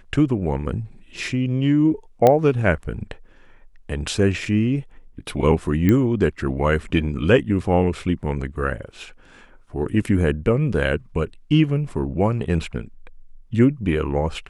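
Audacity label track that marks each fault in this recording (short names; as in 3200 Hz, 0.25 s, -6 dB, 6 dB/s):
2.270000	2.270000	pop -4 dBFS
5.890000	5.890000	pop -8 dBFS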